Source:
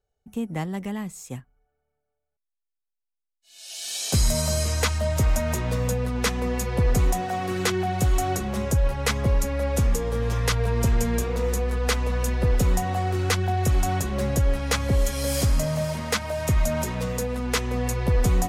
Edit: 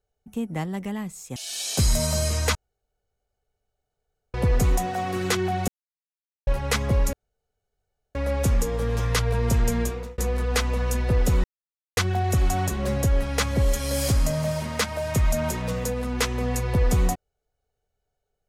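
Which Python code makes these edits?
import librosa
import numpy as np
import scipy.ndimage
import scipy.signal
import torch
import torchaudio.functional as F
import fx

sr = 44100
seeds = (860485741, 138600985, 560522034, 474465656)

y = fx.edit(x, sr, fx.cut(start_s=1.36, length_s=2.35),
    fx.room_tone_fill(start_s=4.9, length_s=1.79),
    fx.silence(start_s=8.03, length_s=0.79),
    fx.insert_room_tone(at_s=9.48, length_s=1.02),
    fx.fade_out_span(start_s=11.13, length_s=0.38),
    fx.silence(start_s=12.77, length_s=0.53), tone=tone)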